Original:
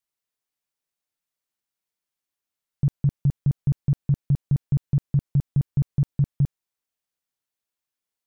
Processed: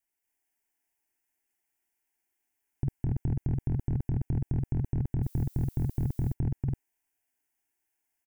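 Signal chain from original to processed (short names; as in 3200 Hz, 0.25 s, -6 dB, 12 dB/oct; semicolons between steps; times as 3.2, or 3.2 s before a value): fixed phaser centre 800 Hz, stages 8; loudspeakers at several distances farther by 81 m -1 dB, 97 m -2 dB; 5.22–6.32 added noise violet -61 dBFS; gain +3.5 dB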